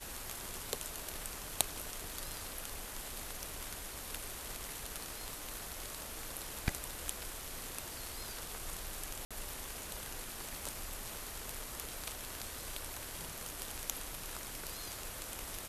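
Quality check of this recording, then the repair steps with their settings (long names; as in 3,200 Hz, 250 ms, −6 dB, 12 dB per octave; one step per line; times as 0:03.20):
0:09.25–0:09.31: drop-out 56 ms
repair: repair the gap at 0:09.25, 56 ms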